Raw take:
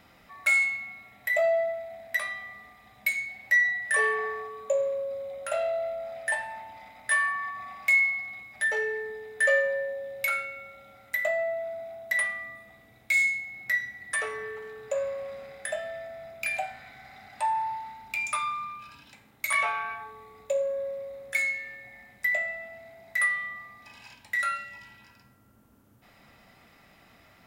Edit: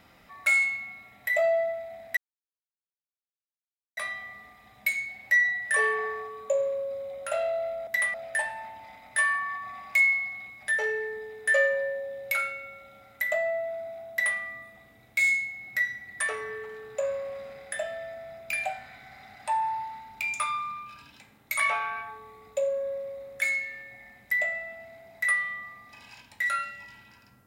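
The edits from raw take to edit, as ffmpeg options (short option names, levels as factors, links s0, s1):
-filter_complex "[0:a]asplit=4[s0][s1][s2][s3];[s0]atrim=end=2.17,asetpts=PTS-STARTPTS,afade=t=out:st=2.166:d=0.004:c=hsin,apad=pad_dur=1.8[s4];[s1]atrim=start=2.17:end=6.072,asetpts=PTS-STARTPTS,afade=t=in:d=0.004:c=hsin[s5];[s2]atrim=start=12.038:end=12.312[s6];[s3]atrim=start=6.068[s7];[s4][s5]concat=n=2:v=0:a=1[s8];[s8][s6]acrossfade=d=0.004:c1=hsin:c2=hsin[s9];[s9][s7]acrossfade=d=0.004:c1=hsin:c2=hsin"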